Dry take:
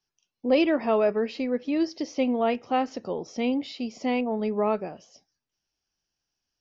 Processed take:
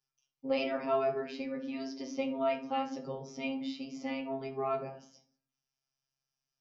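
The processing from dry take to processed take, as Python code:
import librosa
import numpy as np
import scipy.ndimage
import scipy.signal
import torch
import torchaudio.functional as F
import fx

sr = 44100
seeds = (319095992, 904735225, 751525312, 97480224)

y = fx.robotise(x, sr, hz=134.0)
y = fx.rev_fdn(y, sr, rt60_s=0.51, lf_ratio=1.3, hf_ratio=0.6, size_ms=39.0, drr_db=0.5)
y = y * 10.0 ** (-6.5 / 20.0)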